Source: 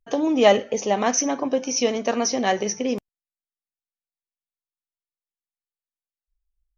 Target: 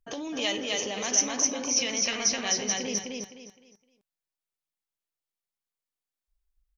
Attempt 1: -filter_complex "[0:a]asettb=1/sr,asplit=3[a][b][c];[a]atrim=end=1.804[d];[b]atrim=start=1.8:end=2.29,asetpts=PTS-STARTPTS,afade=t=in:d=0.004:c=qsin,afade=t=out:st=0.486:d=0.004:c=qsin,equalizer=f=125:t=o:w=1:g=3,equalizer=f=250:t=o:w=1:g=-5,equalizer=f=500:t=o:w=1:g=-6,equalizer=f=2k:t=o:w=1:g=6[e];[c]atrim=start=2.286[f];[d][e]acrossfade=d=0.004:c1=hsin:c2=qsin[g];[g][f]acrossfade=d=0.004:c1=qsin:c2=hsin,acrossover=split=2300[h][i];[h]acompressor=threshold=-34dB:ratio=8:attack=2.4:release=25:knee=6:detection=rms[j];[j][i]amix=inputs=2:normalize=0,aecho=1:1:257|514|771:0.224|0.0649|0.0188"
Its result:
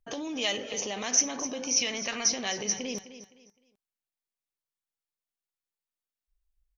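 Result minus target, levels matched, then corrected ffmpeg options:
echo-to-direct -11 dB
-filter_complex "[0:a]asettb=1/sr,asplit=3[a][b][c];[a]atrim=end=1.804[d];[b]atrim=start=1.8:end=2.29,asetpts=PTS-STARTPTS,afade=t=in:d=0.004:c=qsin,afade=t=out:st=0.486:d=0.004:c=qsin,equalizer=f=125:t=o:w=1:g=3,equalizer=f=250:t=o:w=1:g=-5,equalizer=f=500:t=o:w=1:g=-6,equalizer=f=2k:t=o:w=1:g=6[e];[c]atrim=start=2.286[f];[d][e]acrossfade=d=0.004:c1=hsin:c2=qsin[g];[g][f]acrossfade=d=0.004:c1=qsin:c2=hsin,acrossover=split=2300[h][i];[h]acompressor=threshold=-34dB:ratio=8:attack=2.4:release=25:knee=6:detection=rms[j];[j][i]amix=inputs=2:normalize=0,aecho=1:1:257|514|771|1028:0.794|0.23|0.0668|0.0194"

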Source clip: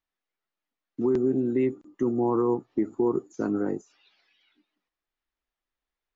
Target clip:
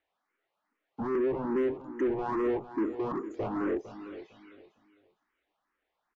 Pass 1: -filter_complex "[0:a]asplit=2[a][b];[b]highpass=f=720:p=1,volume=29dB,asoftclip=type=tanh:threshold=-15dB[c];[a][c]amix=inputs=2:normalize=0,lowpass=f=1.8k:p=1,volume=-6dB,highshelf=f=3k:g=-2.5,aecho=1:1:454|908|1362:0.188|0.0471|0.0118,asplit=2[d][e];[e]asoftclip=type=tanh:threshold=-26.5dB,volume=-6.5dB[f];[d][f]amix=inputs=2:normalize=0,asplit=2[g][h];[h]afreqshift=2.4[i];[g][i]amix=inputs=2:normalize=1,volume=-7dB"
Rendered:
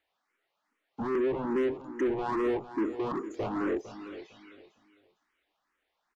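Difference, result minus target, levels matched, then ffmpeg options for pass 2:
8000 Hz band +8.0 dB
-filter_complex "[0:a]asplit=2[a][b];[b]highpass=f=720:p=1,volume=29dB,asoftclip=type=tanh:threshold=-15dB[c];[a][c]amix=inputs=2:normalize=0,lowpass=f=1.8k:p=1,volume=-6dB,highshelf=f=3k:g=-13,aecho=1:1:454|908|1362:0.188|0.0471|0.0118,asplit=2[d][e];[e]asoftclip=type=tanh:threshold=-26.5dB,volume=-6.5dB[f];[d][f]amix=inputs=2:normalize=0,asplit=2[g][h];[h]afreqshift=2.4[i];[g][i]amix=inputs=2:normalize=1,volume=-7dB"

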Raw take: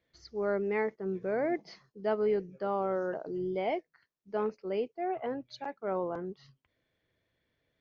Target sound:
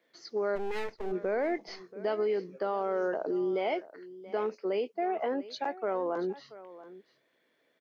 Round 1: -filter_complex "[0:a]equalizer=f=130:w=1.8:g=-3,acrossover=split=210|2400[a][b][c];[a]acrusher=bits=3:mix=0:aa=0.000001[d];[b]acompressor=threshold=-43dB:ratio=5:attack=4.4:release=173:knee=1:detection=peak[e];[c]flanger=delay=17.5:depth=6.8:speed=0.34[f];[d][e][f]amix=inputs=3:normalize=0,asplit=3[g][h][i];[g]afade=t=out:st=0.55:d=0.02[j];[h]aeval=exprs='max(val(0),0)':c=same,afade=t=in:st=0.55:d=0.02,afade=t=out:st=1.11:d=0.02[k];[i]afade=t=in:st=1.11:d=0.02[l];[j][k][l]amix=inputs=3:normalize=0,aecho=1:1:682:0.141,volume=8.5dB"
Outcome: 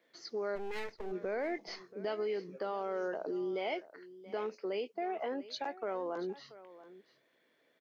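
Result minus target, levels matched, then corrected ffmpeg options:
compressor: peak gain reduction +6 dB
-filter_complex "[0:a]equalizer=f=130:w=1.8:g=-3,acrossover=split=210|2400[a][b][c];[a]acrusher=bits=3:mix=0:aa=0.000001[d];[b]acompressor=threshold=-35.5dB:ratio=5:attack=4.4:release=173:knee=1:detection=peak[e];[c]flanger=delay=17.5:depth=6.8:speed=0.34[f];[d][e][f]amix=inputs=3:normalize=0,asplit=3[g][h][i];[g]afade=t=out:st=0.55:d=0.02[j];[h]aeval=exprs='max(val(0),0)':c=same,afade=t=in:st=0.55:d=0.02,afade=t=out:st=1.11:d=0.02[k];[i]afade=t=in:st=1.11:d=0.02[l];[j][k][l]amix=inputs=3:normalize=0,aecho=1:1:682:0.141,volume=8.5dB"

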